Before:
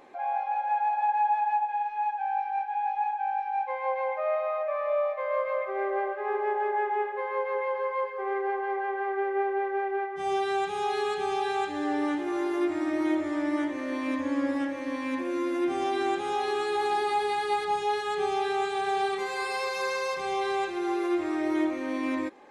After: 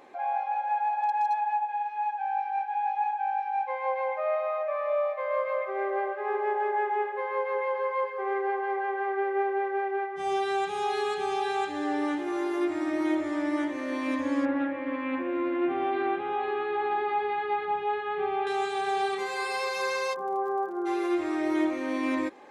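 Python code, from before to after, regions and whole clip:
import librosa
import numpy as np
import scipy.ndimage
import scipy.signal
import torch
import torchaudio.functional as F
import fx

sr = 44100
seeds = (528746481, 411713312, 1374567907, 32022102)

y = fx.chain(x, sr, fx.highpass(hz=96.0, slope=12),
    fx.clip_hard(threshold_db=-20.0), at=(0.77, 1.41))
y = fx.chain(y, sr, fx.lowpass(hz=2700.0, slope=24),
    fx.doppler_dist(depth_ms=0.1), at=(14.45, 18.47))
y = fx.cheby1_bandpass(y, sr, low_hz=180.0, high_hz=1400.0, order=4, at=(20.13, 20.85), fade=0.02)
y = fx.dmg_crackle(y, sr, seeds[0], per_s=46.0, level_db=-45.0, at=(20.13, 20.85), fade=0.02)
y = fx.low_shelf(y, sr, hz=99.0, db=-9.5)
y = fx.rider(y, sr, range_db=10, speed_s=2.0)
y = fx.peak_eq(y, sr, hz=63.0, db=5.5, octaves=0.77)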